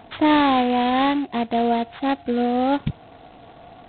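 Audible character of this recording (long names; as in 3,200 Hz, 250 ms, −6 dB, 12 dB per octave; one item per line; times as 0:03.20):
a buzz of ramps at a fixed pitch in blocks of 8 samples
G.726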